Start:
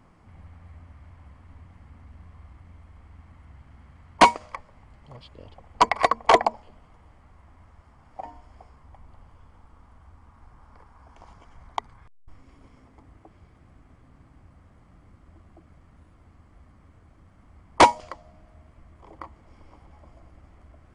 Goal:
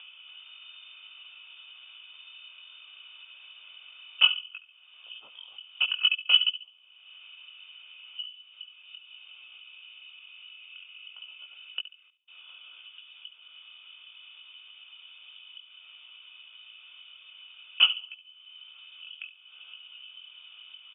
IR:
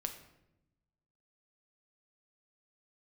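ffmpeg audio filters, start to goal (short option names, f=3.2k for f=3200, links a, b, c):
-filter_complex "[0:a]flanger=delay=15.5:depth=7.8:speed=0.61,asplit=3[a][b][c];[a]bandpass=f=730:t=q:w=8,volume=0dB[d];[b]bandpass=f=1.09k:t=q:w=8,volume=-6dB[e];[c]bandpass=f=2.44k:t=q:w=8,volume=-9dB[f];[d][e][f]amix=inputs=3:normalize=0,acompressor=mode=upward:threshold=-37dB:ratio=2.5,asplit=2[g][h];[h]adelay=70,lowpass=f=1.3k:p=1,volume=-11dB,asplit=2[i][j];[j]adelay=70,lowpass=f=1.3k:p=1,volume=0.43,asplit=2[k][l];[l]adelay=70,lowpass=f=1.3k:p=1,volume=0.43,asplit=2[m][n];[n]adelay=70,lowpass=f=1.3k:p=1,volume=0.43[o];[g][i][k][m][o]amix=inputs=5:normalize=0,lowpass=f=3.1k:t=q:w=0.5098,lowpass=f=3.1k:t=q:w=0.6013,lowpass=f=3.1k:t=q:w=0.9,lowpass=f=3.1k:t=q:w=2.563,afreqshift=-3700,volume=4dB"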